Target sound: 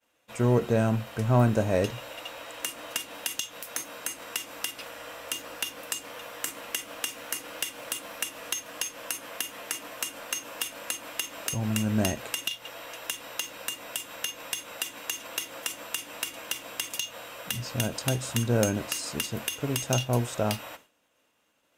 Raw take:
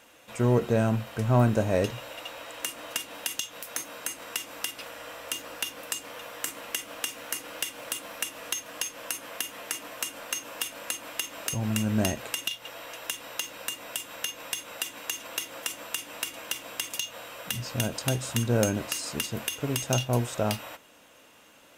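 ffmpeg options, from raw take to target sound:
-af "agate=range=-33dB:threshold=-45dB:ratio=3:detection=peak"

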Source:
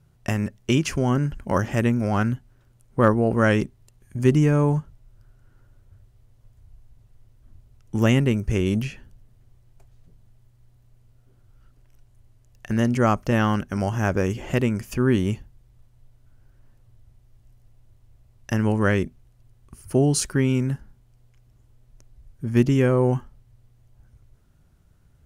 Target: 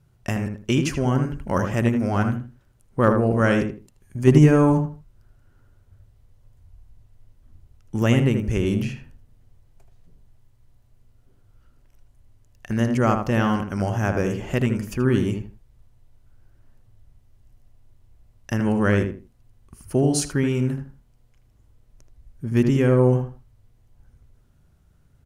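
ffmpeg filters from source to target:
-filter_complex "[0:a]asettb=1/sr,asplit=3[a][b][c];[a]atrim=end=4.274[d];[b]atrim=start=4.27:end=4.78,asetpts=PTS-STARTPTS,afade=t=in:d=0.004:c=qsin,afade=t=out:st=0.506:d=0.004:c=qsin,acontrast=35[e];[c]atrim=start=4.776[f];[d][e]acrossfade=d=0.004:c1=hsin:c2=qsin[g];[g][f]acrossfade=d=0.004:c1=qsin:c2=hsin,asplit=2[h][i];[i]adelay=79,lowpass=f=1.8k:p=1,volume=-5dB,asplit=2[j][k];[k]adelay=79,lowpass=f=1.8k:p=1,volume=0.26,asplit=2[l][m];[m]adelay=79,lowpass=f=1.8k:p=1,volume=0.26[n];[h][j][l][n]amix=inputs=4:normalize=0,volume=-1dB"

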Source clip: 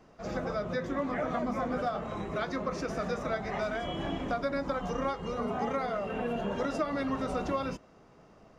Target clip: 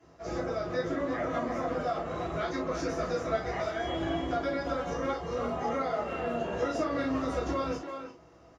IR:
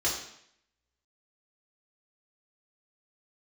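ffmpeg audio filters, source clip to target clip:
-filter_complex "[0:a]asplit=2[a][b];[b]adelay=340,highpass=300,lowpass=3.4k,asoftclip=type=hard:threshold=-28dB,volume=-6dB[c];[a][c]amix=inputs=2:normalize=0[d];[1:a]atrim=start_sample=2205,atrim=end_sample=3087[e];[d][e]afir=irnorm=-1:irlink=0,volume=-8dB"

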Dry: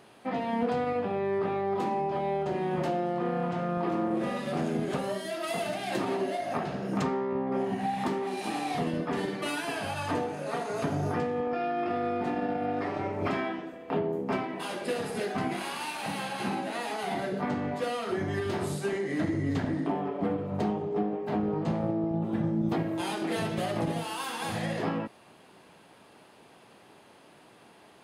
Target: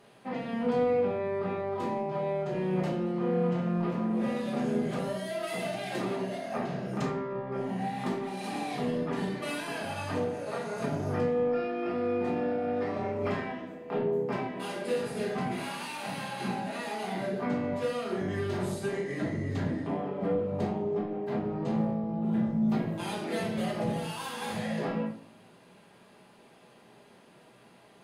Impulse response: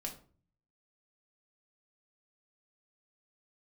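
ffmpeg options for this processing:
-filter_complex "[1:a]atrim=start_sample=2205,asetrate=37044,aresample=44100[a];[0:a][a]afir=irnorm=-1:irlink=0,volume=-2dB"

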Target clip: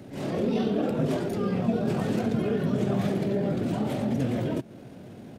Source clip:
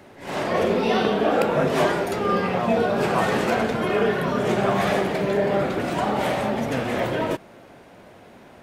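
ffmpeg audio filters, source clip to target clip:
-af "acompressor=threshold=-40dB:ratio=1.5,atempo=1.6,equalizer=f=125:t=o:w=1:g=10,equalizer=f=250:t=o:w=1:g=7,equalizer=f=1k:t=o:w=1:g=-7,equalizer=f=2k:t=o:w=1:g=-5"

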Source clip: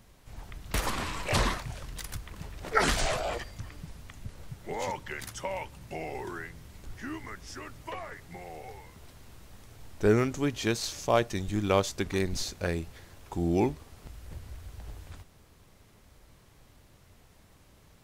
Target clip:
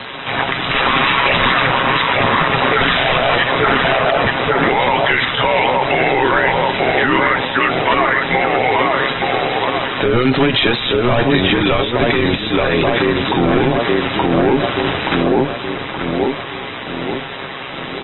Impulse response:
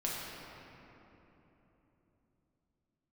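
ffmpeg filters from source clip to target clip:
-filter_complex "[0:a]highpass=150,asplit=2[a][b];[b]adelay=875,lowpass=f=1.1k:p=1,volume=-6dB,asplit=2[c][d];[d]adelay=875,lowpass=f=1.1k:p=1,volume=0.49,asplit=2[e][f];[f]adelay=875,lowpass=f=1.1k:p=1,volume=0.49,asplit=2[g][h];[h]adelay=875,lowpass=f=1.1k:p=1,volume=0.49,asplit=2[i][j];[j]adelay=875,lowpass=f=1.1k:p=1,volume=0.49,asplit=2[k][l];[l]adelay=875,lowpass=f=1.1k:p=1,volume=0.49[m];[a][c][e][g][i][k][m]amix=inputs=7:normalize=0,asplit=2[n][o];[o]highpass=f=720:p=1,volume=29dB,asoftclip=type=tanh:threshold=-9dB[p];[n][p]amix=inputs=2:normalize=0,lowpass=f=5.9k:p=1,volume=-6dB,aecho=1:1:7.4:0.38,tremolo=f=130:d=0.621,acrossover=split=250[q][r];[r]acompressor=threshold=-23dB:ratio=5[s];[q][s]amix=inputs=2:normalize=0,equalizer=f=440:w=0.37:g=-3.5,agate=range=-33dB:threshold=-60dB:ratio=3:detection=peak,asettb=1/sr,asplit=3[t][u][v];[t]atrim=end=11.764[w];[u]atrim=start=11.76:end=14.17,asetpts=PTS-STARTPTS,afade=t=in:d=0.004:c=qsin,afade=t=out:st=2.406:d=0.004:c=qsin,highshelf=f=6.9k:g=10.5[x];[v]atrim=start=14.166[y];[w][x]acrossfade=d=0.004:c1=hsin:c2=qsin[z];[z][y]acrossfade=d=0.004:c1=qsin:c2=hsin,alimiter=level_in=23dB:limit=-1dB:release=50:level=0:latency=1,volume=-4dB" -ar 24000 -c:a aac -b:a 16k

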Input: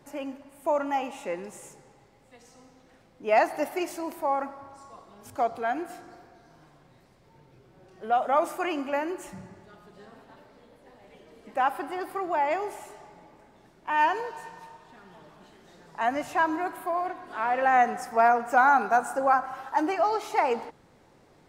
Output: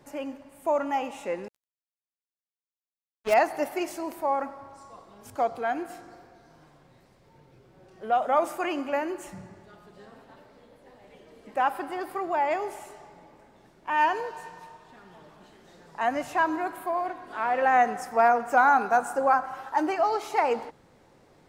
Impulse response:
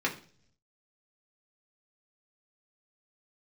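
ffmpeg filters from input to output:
-filter_complex "[0:a]equalizer=f=520:t=o:w=0.26:g=2,asettb=1/sr,asplit=3[a][b][c];[a]atrim=end=1.484[d];[b]atrim=start=1.48:end=3.34,asetpts=PTS-STARTPTS,afade=t=in:d=0.004:c=qsin,afade=t=out:st=1.856:d=0.004:c=qsin,acrusher=bits=4:mix=0:aa=0.5[e];[c]atrim=start=3.336[f];[d][e]acrossfade=d=0.004:c1=hsin:c2=qsin[g];[g][f]acrossfade=d=0.004:c1=qsin:c2=hsin"

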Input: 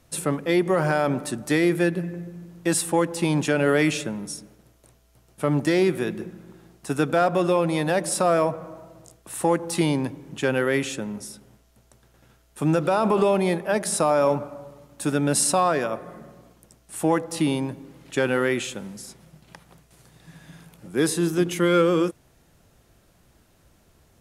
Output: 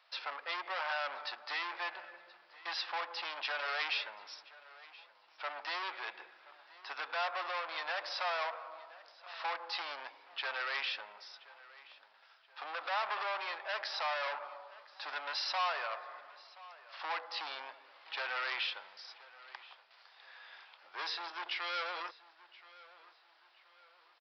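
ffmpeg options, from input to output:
-filter_complex "[0:a]aresample=11025,asoftclip=type=tanh:threshold=-27dB,aresample=44100,highpass=f=830:w=0.5412,highpass=f=830:w=1.3066,asplit=2[a][b];[b]adelay=1026,lowpass=f=3.9k:p=1,volume=-19dB,asplit=2[c][d];[d]adelay=1026,lowpass=f=3.9k:p=1,volume=0.43,asplit=2[e][f];[f]adelay=1026,lowpass=f=3.9k:p=1,volume=0.43[g];[a][c][e][g]amix=inputs=4:normalize=0"

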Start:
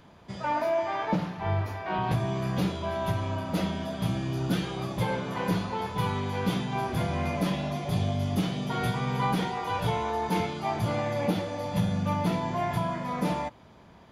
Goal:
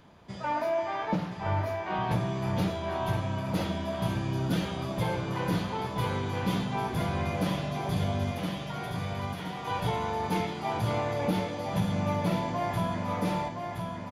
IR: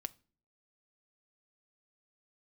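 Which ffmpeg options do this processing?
-filter_complex "[0:a]asettb=1/sr,asplit=3[a][b][c];[a]atrim=end=8.314[d];[b]atrim=start=8.31:end=9.65,asetpts=PTS-STARTPTS,afade=t=in:d=0.004:c=qsin,afade=t=out:st=1.336:d=0.004:c=qsin,acrossover=split=870|3200[e][f][g];[e]acompressor=threshold=-40dB:ratio=4[h];[f]acompressor=threshold=-39dB:ratio=4[i];[g]acompressor=threshold=-52dB:ratio=4[j];[h][i][j]amix=inputs=3:normalize=0[k];[c]atrim=start=9.646[l];[d][k]acrossfade=d=0.004:c1=hsin:c2=qsin[m];[m][l]acrossfade=d=0.004:c1=qsin:c2=hsin,aecho=1:1:1019|2038|3057|4076|5095:0.531|0.239|0.108|0.0484|0.0218,volume=-2dB"

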